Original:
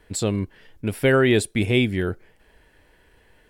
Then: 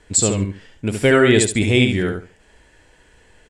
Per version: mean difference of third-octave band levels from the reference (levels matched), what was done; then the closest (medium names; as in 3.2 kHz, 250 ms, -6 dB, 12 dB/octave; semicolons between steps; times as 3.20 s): 4.5 dB: resonant low-pass 7.4 kHz, resonance Q 3.7; on a send: feedback delay 71 ms, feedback 21%, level -5 dB; on the sum: trim +3 dB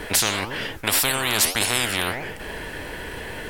16.0 dB: flange 1.8 Hz, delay 6.2 ms, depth 9.2 ms, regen +83%; spectrum-flattening compressor 10:1; trim +5.5 dB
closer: first